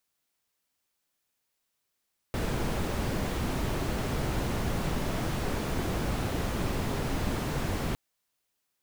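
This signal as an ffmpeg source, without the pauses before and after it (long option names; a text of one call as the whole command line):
ffmpeg -f lavfi -i "anoisesrc=color=brown:amplitude=0.157:duration=5.61:sample_rate=44100:seed=1" out.wav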